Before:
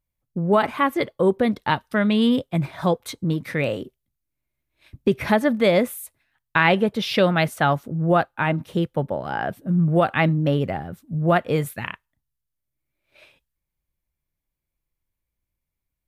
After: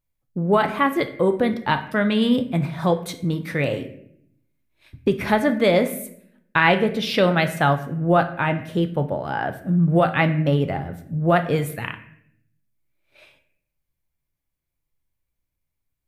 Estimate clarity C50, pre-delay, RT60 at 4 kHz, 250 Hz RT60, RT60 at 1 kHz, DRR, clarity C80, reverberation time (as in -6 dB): 12.0 dB, 3 ms, 0.50 s, 1.0 s, 0.55 s, 7.5 dB, 15.0 dB, 0.65 s